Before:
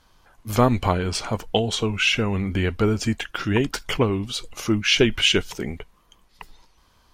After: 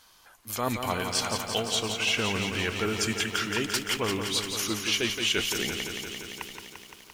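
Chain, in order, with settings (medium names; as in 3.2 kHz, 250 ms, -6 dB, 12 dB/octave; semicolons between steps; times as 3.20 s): tilt EQ +3 dB/octave; reverse; compression 5:1, threshold -26 dBFS, peak gain reduction 15.5 dB; reverse; bit-crushed delay 172 ms, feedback 80%, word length 9-bit, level -6.5 dB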